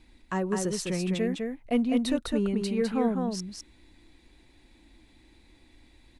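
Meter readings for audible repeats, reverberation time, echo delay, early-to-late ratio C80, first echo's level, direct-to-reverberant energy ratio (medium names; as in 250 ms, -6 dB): 1, no reverb, 205 ms, no reverb, -4.0 dB, no reverb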